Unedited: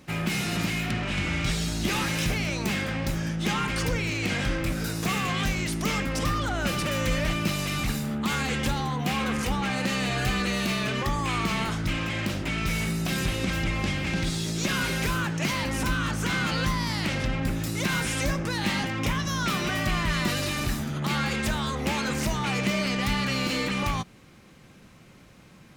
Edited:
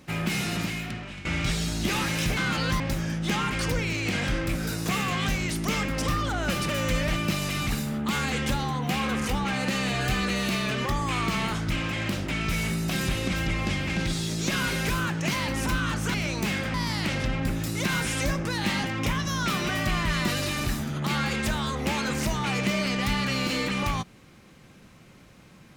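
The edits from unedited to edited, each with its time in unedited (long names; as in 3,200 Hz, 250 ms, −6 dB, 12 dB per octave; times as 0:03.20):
0:00.44–0:01.25: fade out, to −15.5 dB
0:02.37–0:02.97: swap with 0:16.31–0:16.74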